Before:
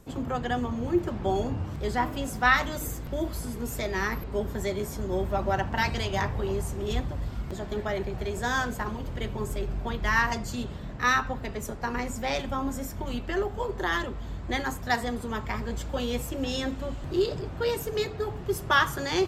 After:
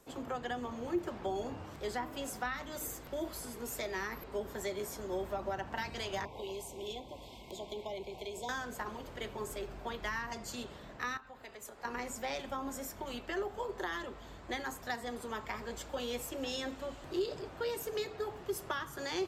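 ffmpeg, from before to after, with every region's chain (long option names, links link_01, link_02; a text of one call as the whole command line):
ffmpeg -i in.wav -filter_complex "[0:a]asettb=1/sr,asplit=3[link_01][link_02][link_03];[link_01]atrim=end=6.254[link_04];[link_02]atrim=start=6.25:end=8.49,asetpts=PTS-STARTPTS,afade=type=in:duration=0.004:curve=qsin,afade=type=out:start_time=2.236:duration=0.004:curve=qsin,equalizer=frequency=3400:width_type=o:width=0.45:gain=6.5,acrossover=split=230|930[link_05][link_06][link_07];[link_05]acompressor=threshold=-37dB:ratio=4[link_08];[link_06]acompressor=threshold=-35dB:ratio=4[link_09];[link_07]acompressor=threshold=-42dB:ratio=4[link_10];[link_08][link_09][link_10]amix=inputs=3:normalize=0,asuperstop=centerf=1500:order=20:qfactor=1.5[link_11];[link_03]atrim=start=8.486[link_12];[link_04][link_11]acrossfade=duration=0.004:curve1=hsin:curve2=qsin[link_13];[link_13][link_12]acrossfade=duration=0.004:curve1=qsin:curve2=hsin,asettb=1/sr,asplit=3[link_14][link_15][link_16];[link_14]atrim=end=11.174[link_17];[link_15]atrim=start=11.17:end=11.85,asetpts=PTS-STARTPTS,afade=type=in:duration=0.004:curve=qsin,afade=type=out:start_time=0.676:duration=0.004:curve=qsin,bandreject=frequency=5700:width=10,acompressor=threshold=-37dB:ratio=3:attack=3.2:release=140:knee=1:detection=peak,lowshelf=frequency=500:gain=-6.5[link_18];[link_16]atrim=start=11.846[link_19];[link_17][link_18]acrossfade=duration=0.004:curve1=hsin:curve2=qsin[link_20];[link_20][link_19]acrossfade=duration=0.004:curve1=qsin:curve2=hsin,bass=frequency=250:gain=-14,treble=frequency=4000:gain=1,acrossover=split=340[link_21][link_22];[link_22]acompressor=threshold=-31dB:ratio=10[link_23];[link_21][link_23]amix=inputs=2:normalize=0,volume=-4dB" out.wav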